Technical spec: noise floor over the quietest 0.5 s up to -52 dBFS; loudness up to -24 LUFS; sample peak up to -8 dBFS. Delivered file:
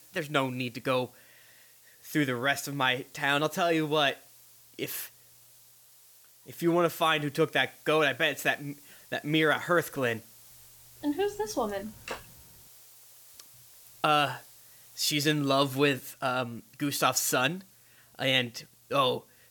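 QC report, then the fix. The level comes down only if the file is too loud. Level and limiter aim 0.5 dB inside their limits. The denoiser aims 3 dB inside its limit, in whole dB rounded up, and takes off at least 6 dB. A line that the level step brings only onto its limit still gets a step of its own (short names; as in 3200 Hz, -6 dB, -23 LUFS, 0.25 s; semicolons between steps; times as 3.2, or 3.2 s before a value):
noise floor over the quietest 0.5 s -58 dBFS: OK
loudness -28.5 LUFS: OK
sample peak -10.5 dBFS: OK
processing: none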